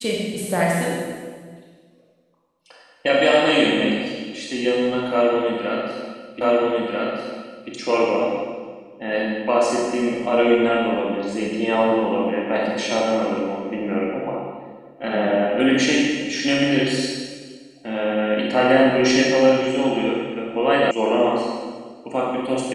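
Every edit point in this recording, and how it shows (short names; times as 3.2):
6.41 repeat of the last 1.29 s
20.91 sound cut off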